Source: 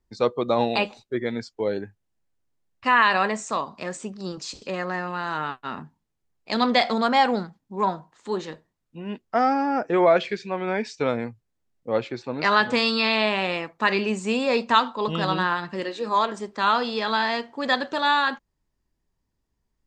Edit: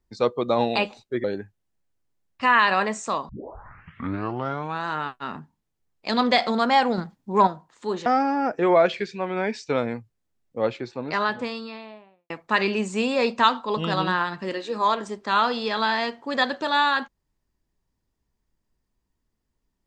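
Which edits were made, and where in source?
0:01.24–0:01.67: remove
0:03.72: tape start 1.58 s
0:07.41–0:07.90: clip gain +5.5 dB
0:08.49–0:09.37: remove
0:11.89–0:13.61: fade out and dull

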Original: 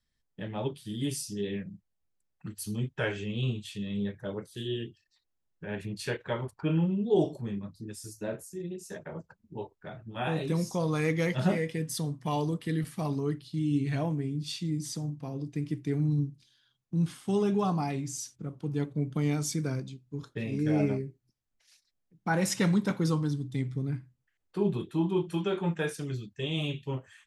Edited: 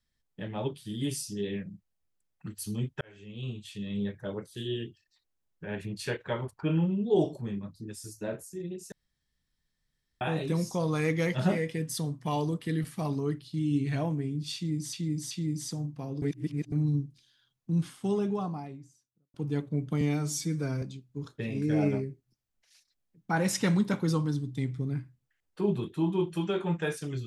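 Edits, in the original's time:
0:03.01–0:03.97: fade in
0:08.92–0:10.21: fill with room tone
0:14.55–0:14.93: repeat, 3 plays
0:15.46–0:15.96: reverse
0:16.95–0:18.58: fade out and dull
0:19.25–0:19.79: time-stretch 1.5×

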